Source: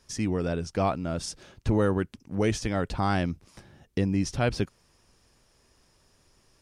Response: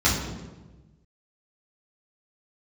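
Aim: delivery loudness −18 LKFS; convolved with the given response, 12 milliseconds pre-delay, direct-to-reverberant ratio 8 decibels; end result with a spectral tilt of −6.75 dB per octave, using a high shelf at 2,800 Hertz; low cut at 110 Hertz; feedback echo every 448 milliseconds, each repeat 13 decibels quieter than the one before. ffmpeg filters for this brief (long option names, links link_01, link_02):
-filter_complex "[0:a]highpass=110,highshelf=frequency=2800:gain=-8.5,aecho=1:1:448|896|1344:0.224|0.0493|0.0108,asplit=2[link_01][link_02];[1:a]atrim=start_sample=2205,adelay=12[link_03];[link_02][link_03]afir=irnorm=-1:irlink=0,volume=-24.5dB[link_04];[link_01][link_04]amix=inputs=2:normalize=0,volume=9dB"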